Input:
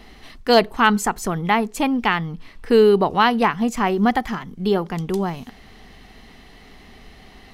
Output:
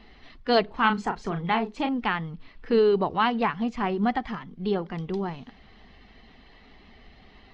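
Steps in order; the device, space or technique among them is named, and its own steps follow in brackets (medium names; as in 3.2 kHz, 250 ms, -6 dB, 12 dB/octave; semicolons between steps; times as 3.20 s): clip after many re-uploads (low-pass 4.6 kHz 24 dB/octave; coarse spectral quantiser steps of 15 dB); 0.65–1.89 s: doubling 36 ms -7.5 dB; trim -6.5 dB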